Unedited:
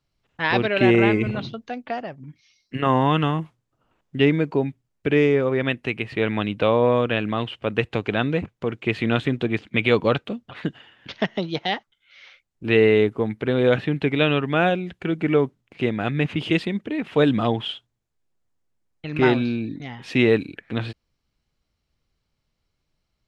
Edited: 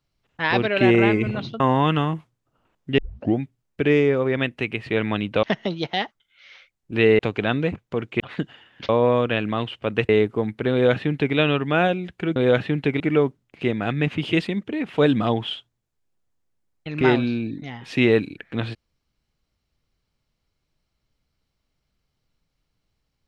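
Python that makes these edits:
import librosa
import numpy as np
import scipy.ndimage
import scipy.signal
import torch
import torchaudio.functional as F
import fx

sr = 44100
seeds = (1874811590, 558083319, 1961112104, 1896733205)

y = fx.edit(x, sr, fx.cut(start_s=1.6, length_s=1.26),
    fx.tape_start(start_s=4.24, length_s=0.42),
    fx.swap(start_s=6.69, length_s=1.2, other_s=11.15, other_length_s=1.76),
    fx.cut(start_s=8.9, length_s=1.56),
    fx.duplicate(start_s=13.54, length_s=0.64, to_s=15.18), tone=tone)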